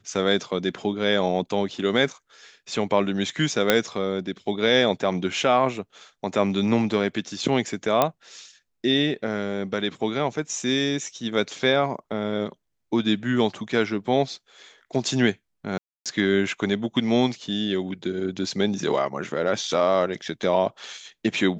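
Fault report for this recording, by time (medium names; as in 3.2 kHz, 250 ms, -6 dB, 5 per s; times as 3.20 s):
3.70 s: pop -2 dBFS
8.02 s: pop -5 dBFS
15.78–16.06 s: dropout 277 ms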